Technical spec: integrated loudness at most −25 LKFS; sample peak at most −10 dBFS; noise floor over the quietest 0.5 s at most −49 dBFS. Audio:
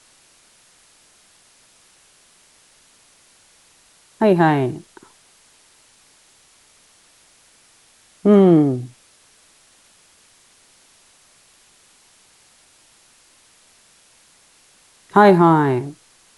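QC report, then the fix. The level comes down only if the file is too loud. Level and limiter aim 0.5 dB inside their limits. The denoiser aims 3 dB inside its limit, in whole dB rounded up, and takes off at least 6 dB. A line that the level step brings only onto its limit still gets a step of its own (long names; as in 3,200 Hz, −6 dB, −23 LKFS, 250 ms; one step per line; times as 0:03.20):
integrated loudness −15.5 LKFS: out of spec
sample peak −1.5 dBFS: out of spec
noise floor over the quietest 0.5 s −54 dBFS: in spec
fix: level −10 dB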